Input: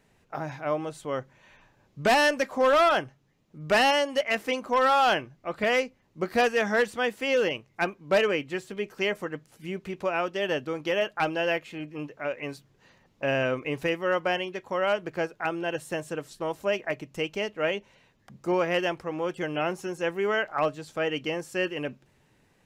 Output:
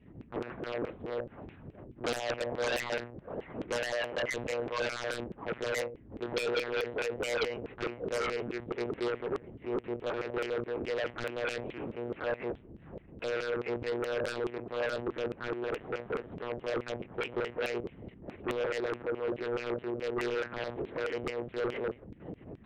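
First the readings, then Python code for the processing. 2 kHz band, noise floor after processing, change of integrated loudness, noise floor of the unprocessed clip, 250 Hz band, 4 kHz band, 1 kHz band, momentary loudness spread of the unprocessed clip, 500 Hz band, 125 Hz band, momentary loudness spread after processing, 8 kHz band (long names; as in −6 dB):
−9.0 dB, −55 dBFS, −8.0 dB, −66 dBFS, −6.0 dB, −9.0 dB, −12.5 dB, 13 LU, −6.5 dB, −5.0 dB, 8 LU, −5.5 dB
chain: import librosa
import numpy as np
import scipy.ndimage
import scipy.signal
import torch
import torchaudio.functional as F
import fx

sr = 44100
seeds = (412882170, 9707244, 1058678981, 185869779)

p1 = fx.lower_of_two(x, sr, delay_ms=2.0)
p2 = p1 + fx.echo_single(p1, sr, ms=653, db=-23.5, dry=0)
p3 = np.repeat(scipy.signal.resample_poly(p2, 1, 6), 6)[:len(p2)]
p4 = fx.add_hum(p3, sr, base_hz=60, snr_db=15)
p5 = fx.curve_eq(p4, sr, hz=(140.0, 210.0, 330.0, 760.0), db=(0, -20, 2, -17))
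p6 = fx.room_shoebox(p5, sr, seeds[0], volume_m3=190.0, walls='furnished', distance_m=0.3)
p7 = fx.lpc_monotone(p6, sr, seeds[1], pitch_hz=120.0, order=8)
p8 = fx.filter_lfo_bandpass(p7, sr, shape='saw_down', hz=4.7, low_hz=450.0, high_hz=3000.0, q=1.4)
p9 = fx.fold_sine(p8, sr, drive_db=19, ceiling_db=-22.0)
y = p8 + (p9 * librosa.db_to_amplitude(-8.0))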